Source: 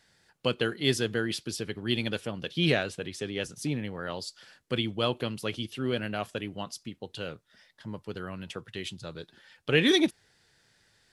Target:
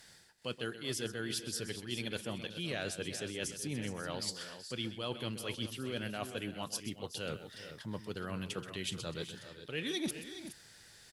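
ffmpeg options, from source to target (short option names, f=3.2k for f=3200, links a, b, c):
-af "aemphasis=mode=production:type=cd,areverse,acompressor=threshold=-41dB:ratio=6,areverse,aecho=1:1:128|378|417:0.224|0.168|0.266,volume=4.5dB"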